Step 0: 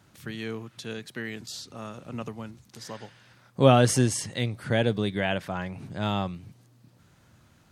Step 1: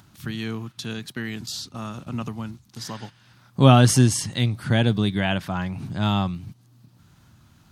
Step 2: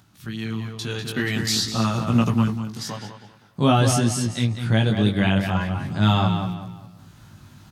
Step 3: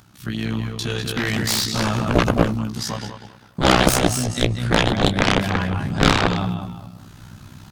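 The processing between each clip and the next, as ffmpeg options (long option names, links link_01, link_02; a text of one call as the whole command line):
ffmpeg -i in.wav -filter_complex "[0:a]equalizer=frequency=500:width_type=o:width=1:gain=-11,equalizer=frequency=2000:width_type=o:width=1:gain=-6,equalizer=frequency=8000:width_type=o:width=1:gain=-4,asplit=2[link_01][link_02];[link_02]acompressor=mode=upward:threshold=-35dB:ratio=2.5,volume=2dB[link_03];[link_01][link_03]amix=inputs=2:normalize=0,agate=range=-11dB:threshold=-38dB:ratio=16:detection=peak,volume=1dB" out.wav
ffmpeg -i in.wav -filter_complex "[0:a]asplit=2[link_01][link_02];[link_02]adelay=197,lowpass=frequency=4200:poles=1,volume=-7dB,asplit=2[link_03][link_04];[link_04]adelay=197,lowpass=frequency=4200:poles=1,volume=0.33,asplit=2[link_05][link_06];[link_06]adelay=197,lowpass=frequency=4200:poles=1,volume=0.33,asplit=2[link_07][link_08];[link_08]adelay=197,lowpass=frequency=4200:poles=1,volume=0.33[link_09];[link_01][link_03][link_05][link_07][link_09]amix=inputs=5:normalize=0,dynaudnorm=framelen=250:gausssize=9:maxgain=14dB,flanger=delay=17:depth=3.4:speed=0.46" out.wav
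ffmpeg -i in.wav -af "tremolo=f=63:d=0.71,aeval=exprs='0.501*(cos(1*acos(clip(val(0)/0.501,-1,1)))-cos(1*PI/2))+0.178*(cos(7*acos(clip(val(0)/0.501,-1,1)))-cos(7*PI/2))':channel_layout=same,volume=5dB" out.wav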